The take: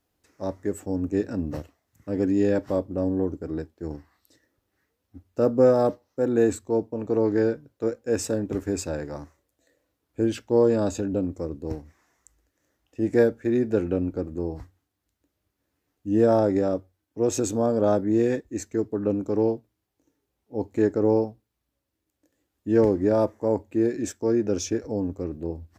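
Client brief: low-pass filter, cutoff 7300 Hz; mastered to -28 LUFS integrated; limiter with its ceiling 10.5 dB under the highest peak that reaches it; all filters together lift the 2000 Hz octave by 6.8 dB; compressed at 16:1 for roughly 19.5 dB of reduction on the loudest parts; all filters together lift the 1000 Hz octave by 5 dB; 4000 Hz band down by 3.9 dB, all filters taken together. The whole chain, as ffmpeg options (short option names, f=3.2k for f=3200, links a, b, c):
-af "lowpass=7.3k,equalizer=f=1k:t=o:g=5.5,equalizer=f=2k:t=o:g=8,equalizer=f=4k:t=o:g=-7,acompressor=threshold=-32dB:ratio=16,volume=12.5dB,alimiter=limit=-16dB:level=0:latency=1"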